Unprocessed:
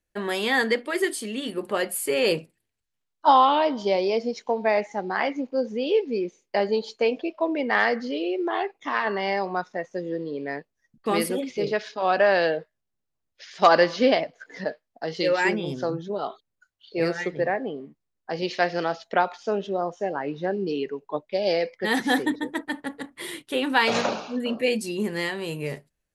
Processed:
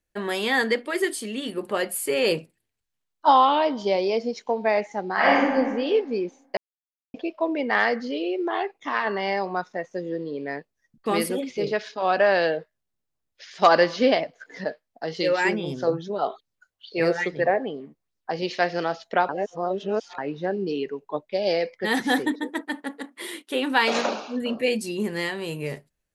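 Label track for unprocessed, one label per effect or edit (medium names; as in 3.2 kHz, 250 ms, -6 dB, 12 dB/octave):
5.130000	5.530000	reverb throw, RT60 1.4 s, DRR -7.5 dB
6.570000	7.140000	mute
15.870000	18.310000	sweeping bell 2.4 Hz 460–5600 Hz +9 dB
19.290000	20.180000	reverse
22.270000	24.420000	brick-wall FIR high-pass 190 Hz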